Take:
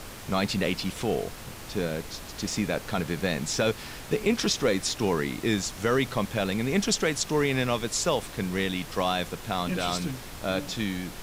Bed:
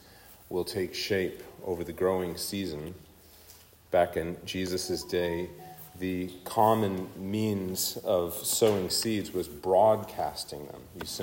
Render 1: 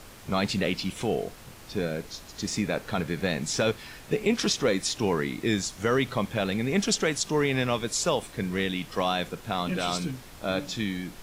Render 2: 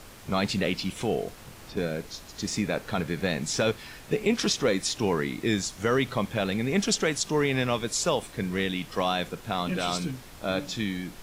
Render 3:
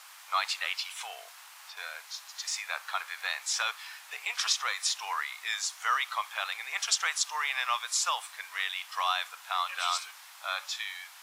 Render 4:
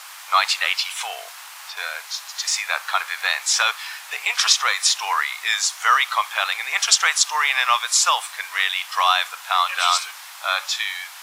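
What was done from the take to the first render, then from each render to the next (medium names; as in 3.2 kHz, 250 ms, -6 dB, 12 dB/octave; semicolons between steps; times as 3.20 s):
noise print and reduce 6 dB
1.28–1.77 s: three bands compressed up and down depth 70%
steep high-pass 850 Hz 36 dB/octave; dynamic bell 1.2 kHz, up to +6 dB, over -50 dBFS, Q 5.4
trim +11.5 dB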